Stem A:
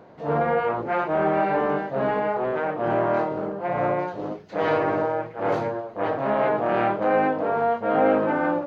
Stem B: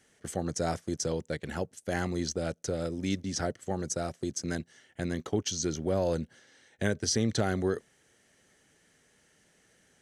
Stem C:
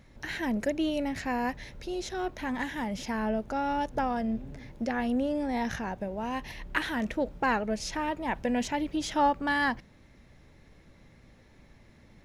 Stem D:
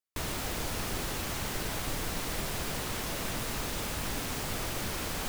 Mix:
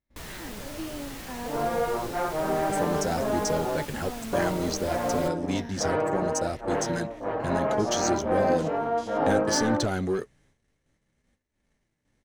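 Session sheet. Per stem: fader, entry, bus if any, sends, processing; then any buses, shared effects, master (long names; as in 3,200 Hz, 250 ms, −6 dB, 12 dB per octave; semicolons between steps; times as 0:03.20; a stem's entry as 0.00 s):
0.0 dB, 1.25 s, muted 0:03.81–0:04.33, no send, high-shelf EQ 2,600 Hz −10 dB
−0.5 dB, 2.45 s, no send, leveller curve on the samples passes 2
−3.5 dB, 0.00 s, no send, spectrum averaged block by block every 100 ms
−2.0 dB, 0.00 s, no send, no processing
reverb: not used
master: noise gate −58 dBFS, range −23 dB; flanger 0.61 Hz, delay 2.8 ms, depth 6 ms, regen −53%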